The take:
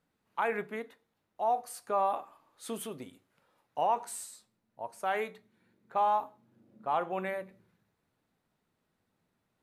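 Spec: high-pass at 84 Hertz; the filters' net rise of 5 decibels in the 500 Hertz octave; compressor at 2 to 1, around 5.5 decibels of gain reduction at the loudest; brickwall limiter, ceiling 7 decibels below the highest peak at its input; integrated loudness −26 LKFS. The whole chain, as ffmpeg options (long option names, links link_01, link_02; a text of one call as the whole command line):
ffmpeg -i in.wav -af "highpass=84,equalizer=frequency=500:width_type=o:gain=6.5,acompressor=threshold=-31dB:ratio=2,volume=13dB,alimiter=limit=-14dB:level=0:latency=1" out.wav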